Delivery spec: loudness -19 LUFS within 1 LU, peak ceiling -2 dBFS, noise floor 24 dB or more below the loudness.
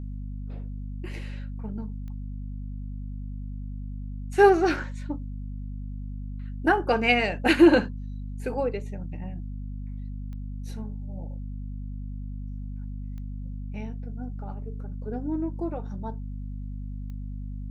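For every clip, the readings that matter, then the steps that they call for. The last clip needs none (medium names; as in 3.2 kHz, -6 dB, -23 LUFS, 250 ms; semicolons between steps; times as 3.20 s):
clicks found 4; hum 50 Hz; highest harmonic 250 Hz; hum level -32 dBFS; loudness -29.0 LUFS; peak level -4.5 dBFS; loudness target -19.0 LUFS
-> de-click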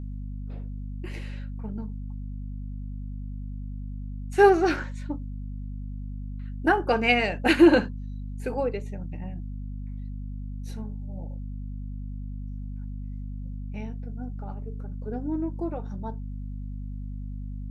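clicks found 0; hum 50 Hz; highest harmonic 250 Hz; hum level -32 dBFS
-> de-hum 50 Hz, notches 5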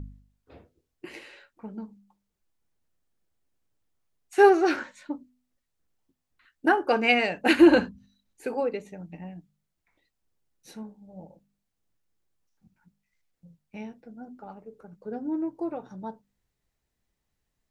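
hum not found; loudness -23.5 LUFS; peak level -5.0 dBFS; loudness target -19.0 LUFS
-> trim +4.5 dB; peak limiter -2 dBFS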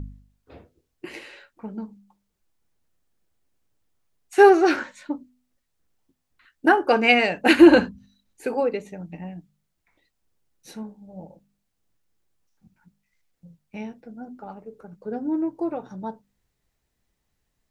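loudness -19.0 LUFS; peak level -2.0 dBFS; noise floor -77 dBFS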